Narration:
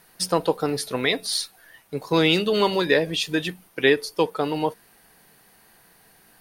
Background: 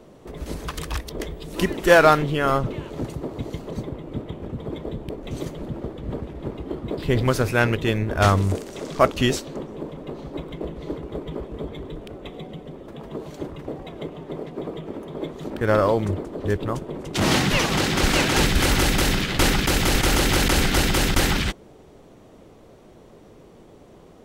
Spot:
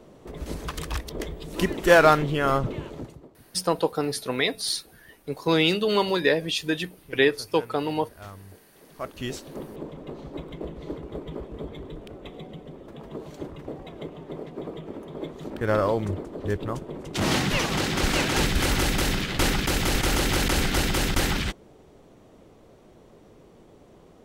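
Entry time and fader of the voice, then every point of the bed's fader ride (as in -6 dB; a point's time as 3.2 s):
3.35 s, -2.0 dB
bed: 2.87 s -2 dB
3.41 s -25 dB
8.71 s -25 dB
9.6 s -4 dB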